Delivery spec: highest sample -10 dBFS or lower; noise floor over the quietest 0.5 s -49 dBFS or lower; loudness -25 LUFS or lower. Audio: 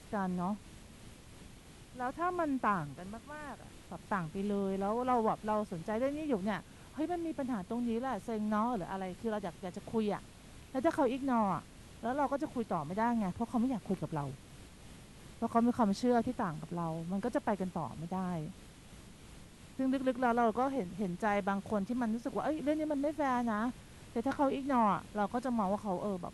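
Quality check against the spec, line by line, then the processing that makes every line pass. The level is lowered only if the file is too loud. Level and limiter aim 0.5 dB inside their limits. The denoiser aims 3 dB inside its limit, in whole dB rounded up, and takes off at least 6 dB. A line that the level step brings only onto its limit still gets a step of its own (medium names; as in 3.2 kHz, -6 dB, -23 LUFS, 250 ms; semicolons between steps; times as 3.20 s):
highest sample -17.0 dBFS: pass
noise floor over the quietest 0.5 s -54 dBFS: pass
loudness -35.0 LUFS: pass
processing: none needed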